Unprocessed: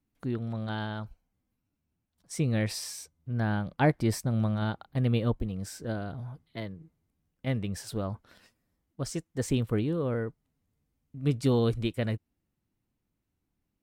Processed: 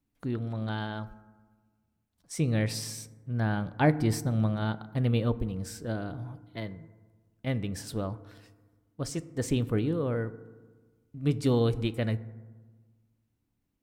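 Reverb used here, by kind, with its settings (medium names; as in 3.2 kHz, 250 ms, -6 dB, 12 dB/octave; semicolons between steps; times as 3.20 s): FDN reverb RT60 1.4 s, low-frequency decay 1.25×, high-frequency decay 0.35×, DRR 14 dB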